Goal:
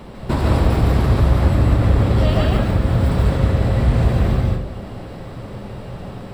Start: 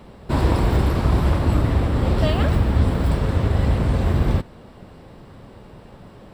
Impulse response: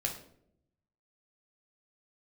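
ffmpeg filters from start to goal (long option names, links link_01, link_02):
-filter_complex "[0:a]acompressor=threshold=-23dB:ratio=6,asplit=2[link_01][link_02];[1:a]atrim=start_sample=2205,adelay=143[link_03];[link_02][link_03]afir=irnorm=-1:irlink=0,volume=-2.5dB[link_04];[link_01][link_04]amix=inputs=2:normalize=0,volume=6.5dB"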